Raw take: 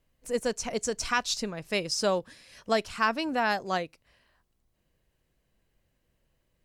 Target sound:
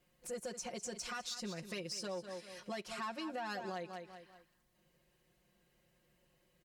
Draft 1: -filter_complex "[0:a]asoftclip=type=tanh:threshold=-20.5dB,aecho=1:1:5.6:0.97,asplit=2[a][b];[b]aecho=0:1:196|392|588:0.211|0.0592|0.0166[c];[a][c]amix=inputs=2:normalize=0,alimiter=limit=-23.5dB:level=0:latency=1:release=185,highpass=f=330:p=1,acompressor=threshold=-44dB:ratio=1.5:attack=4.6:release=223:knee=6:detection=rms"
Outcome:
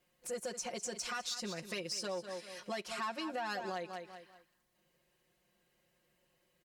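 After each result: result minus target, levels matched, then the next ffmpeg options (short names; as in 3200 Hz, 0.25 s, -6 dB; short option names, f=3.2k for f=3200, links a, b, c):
125 Hz band -4.0 dB; compressor: peak gain reduction -3.5 dB
-filter_complex "[0:a]asoftclip=type=tanh:threshold=-20.5dB,aecho=1:1:5.6:0.97,asplit=2[a][b];[b]aecho=0:1:196|392|588:0.211|0.0592|0.0166[c];[a][c]amix=inputs=2:normalize=0,alimiter=limit=-23.5dB:level=0:latency=1:release=185,highpass=f=120:p=1,acompressor=threshold=-44dB:ratio=1.5:attack=4.6:release=223:knee=6:detection=rms"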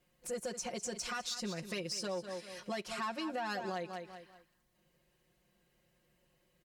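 compressor: peak gain reduction -3.5 dB
-filter_complex "[0:a]asoftclip=type=tanh:threshold=-20.5dB,aecho=1:1:5.6:0.97,asplit=2[a][b];[b]aecho=0:1:196|392|588:0.211|0.0592|0.0166[c];[a][c]amix=inputs=2:normalize=0,alimiter=limit=-23.5dB:level=0:latency=1:release=185,highpass=f=120:p=1,acompressor=threshold=-54.5dB:ratio=1.5:attack=4.6:release=223:knee=6:detection=rms"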